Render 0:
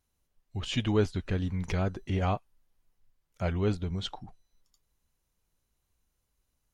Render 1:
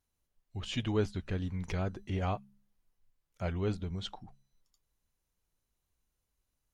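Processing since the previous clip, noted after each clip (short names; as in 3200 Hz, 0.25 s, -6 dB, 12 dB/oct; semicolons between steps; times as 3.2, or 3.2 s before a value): de-hum 67.87 Hz, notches 3; gain -4.5 dB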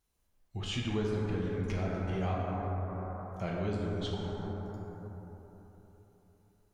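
plate-style reverb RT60 3.8 s, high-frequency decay 0.3×, DRR -4.5 dB; compressor 2:1, threshold -36 dBFS, peak gain reduction 8 dB; gain +1.5 dB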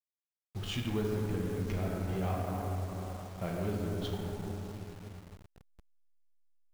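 level-crossing sampler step -44 dBFS; in parallel at -7 dB: backlash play -40 dBFS; on the sum: gain -3.5 dB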